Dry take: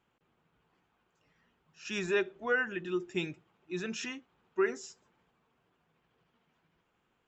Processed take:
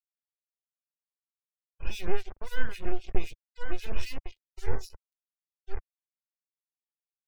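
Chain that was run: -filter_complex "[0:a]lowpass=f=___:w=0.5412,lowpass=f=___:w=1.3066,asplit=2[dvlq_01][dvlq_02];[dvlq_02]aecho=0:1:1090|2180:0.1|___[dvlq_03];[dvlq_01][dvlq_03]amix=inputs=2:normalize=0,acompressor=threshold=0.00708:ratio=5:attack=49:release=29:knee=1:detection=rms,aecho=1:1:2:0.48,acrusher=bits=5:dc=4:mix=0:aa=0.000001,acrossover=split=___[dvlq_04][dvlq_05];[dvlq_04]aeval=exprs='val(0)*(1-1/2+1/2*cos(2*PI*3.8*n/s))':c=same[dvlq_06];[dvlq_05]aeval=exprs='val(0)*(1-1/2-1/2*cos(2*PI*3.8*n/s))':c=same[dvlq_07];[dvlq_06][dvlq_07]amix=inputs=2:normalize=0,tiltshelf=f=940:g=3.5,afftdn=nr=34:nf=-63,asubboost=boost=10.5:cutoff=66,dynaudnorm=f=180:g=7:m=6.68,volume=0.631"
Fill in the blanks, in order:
5.4k, 5.4k, 0.028, 2400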